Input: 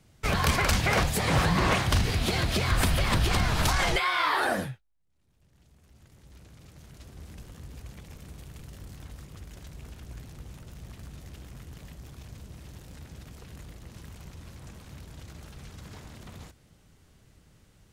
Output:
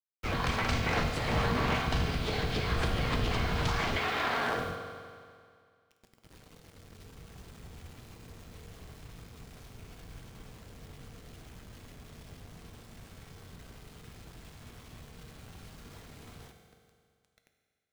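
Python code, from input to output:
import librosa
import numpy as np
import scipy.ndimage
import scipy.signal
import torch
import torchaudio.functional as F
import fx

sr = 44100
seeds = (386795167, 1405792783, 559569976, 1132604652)

y = fx.cycle_switch(x, sr, every=3, mode='inverted')
y = scipy.signal.sosfilt(scipy.signal.butter(2, 4800.0, 'lowpass', fs=sr, output='sos'), y)
y = fx.quant_dither(y, sr, seeds[0], bits=8, dither='none')
y = fx.rev_fdn(y, sr, rt60_s=2.1, lf_ratio=0.95, hf_ratio=0.95, size_ms=13.0, drr_db=3.5)
y = y * 10.0 ** (-6.5 / 20.0)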